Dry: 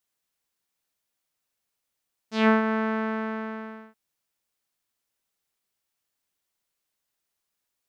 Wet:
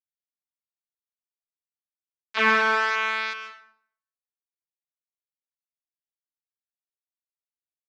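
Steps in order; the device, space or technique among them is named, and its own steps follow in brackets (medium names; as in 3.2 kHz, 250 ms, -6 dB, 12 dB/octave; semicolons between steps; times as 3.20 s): 2.90–3.41 s: peaking EQ 490 Hz -11.5 dB -> -5 dB 0.21 oct; hand-held game console (bit crusher 4-bit; cabinet simulation 400–4700 Hz, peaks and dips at 460 Hz -4 dB, 730 Hz -6 dB, 1.1 kHz +4 dB, 1.6 kHz +8 dB, 2.3 kHz +8 dB); plate-style reverb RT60 0.64 s, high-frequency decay 0.7×, pre-delay 115 ms, DRR 6.5 dB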